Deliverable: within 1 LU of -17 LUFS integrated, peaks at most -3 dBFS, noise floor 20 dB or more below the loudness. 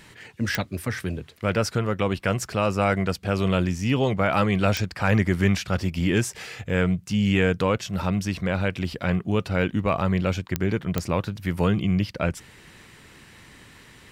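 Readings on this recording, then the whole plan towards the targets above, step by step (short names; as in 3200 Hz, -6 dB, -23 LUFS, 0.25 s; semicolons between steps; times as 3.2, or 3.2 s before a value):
clicks 4; loudness -24.5 LUFS; peak -7.5 dBFS; loudness target -17.0 LUFS
-> de-click; gain +7.5 dB; limiter -3 dBFS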